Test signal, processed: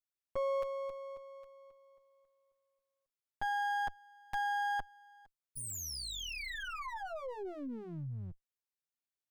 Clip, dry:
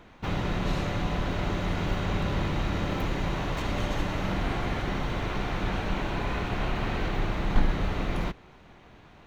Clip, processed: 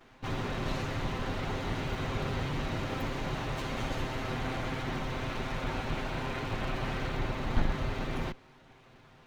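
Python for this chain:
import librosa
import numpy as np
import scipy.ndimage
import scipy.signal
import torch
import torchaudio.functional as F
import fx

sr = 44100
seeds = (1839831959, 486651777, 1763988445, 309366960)

y = fx.lower_of_two(x, sr, delay_ms=7.7)
y = y * 10.0 ** (-3.0 / 20.0)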